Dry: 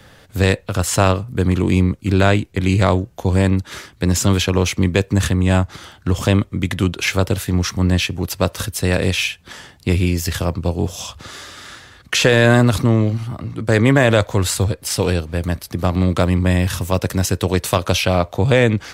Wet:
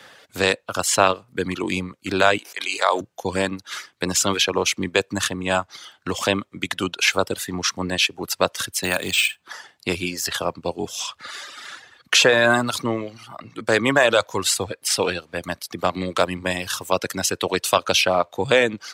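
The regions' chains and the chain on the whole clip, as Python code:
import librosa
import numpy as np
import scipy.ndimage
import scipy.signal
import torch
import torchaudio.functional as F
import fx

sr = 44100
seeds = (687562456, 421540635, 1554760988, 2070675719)

y = fx.chain(x, sr, fx.highpass(hz=660.0, slope=12),
    fx.sustainer(db_per_s=26.0), at=(2.38, 3.01))
y = fx.chain(y, sr, fx.peak_eq(hz=480.0, db=-10.0, octaves=0.33),
    fx.resample_bad(factor=4, down='filtered', up='hold'),
    fx.band_squash(depth_pct=40), at=(8.83, 9.44))
y = fx.weighting(y, sr, curve='A')
y = fx.dereverb_blind(y, sr, rt60_s=1.2)
y = fx.dynamic_eq(y, sr, hz=2000.0, q=4.1, threshold_db=-38.0, ratio=4.0, max_db=-5)
y = F.gain(torch.from_numpy(y), 2.0).numpy()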